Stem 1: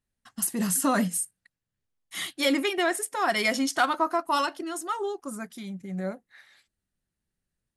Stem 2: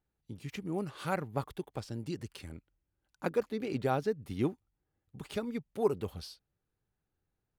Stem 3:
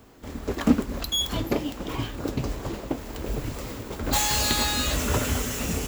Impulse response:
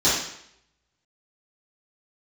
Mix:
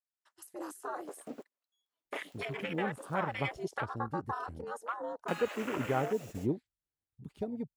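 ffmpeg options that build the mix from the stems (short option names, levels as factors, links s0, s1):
-filter_complex "[0:a]equalizer=f=320:w=0.36:g=4,alimiter=limit=0.2:level=0:latency=1:release=364,aeval=exprs='val(0)*sin(2*PI*120*n/s)':c=same,volume=1.33,asplit=2[s0][s1];[1:a]adelay=2050,volume=0.891[s2];[2:a]adelay=600,volume=0.631,asplit=3[s3][s4][s5];[s3]atrim=end=3.6,asetpts=PTS-STARTPTS,afade=t=out:st=3.596:d=0.004:c=hsin[s6];[s4]atrim=start=3.6:end=5.28,asetpts=PTS-STARTPTS,volume=0[s7];[s5]atrim=start=5.28,asetpts=PTS-STARTPTS,afade=t=in:d=0.004:c=hsin[s8];[s6][s7][s8]concat=n=3:v=0:a=1[s9];[s1]apad=whole_len=285654[s10];[s9][s10]sidechaingate=range=0.0126:threshold=0.00251:ratio=16:detection=peak[s11];[s0][s11]amix=inputs=2:normalize=0,highpass=690,acompressor=threshold=0.0224:ratio=8,volume=1[s12];[s2][s12]amix=inputs=2:normalize=0,afwtdn=0.0126"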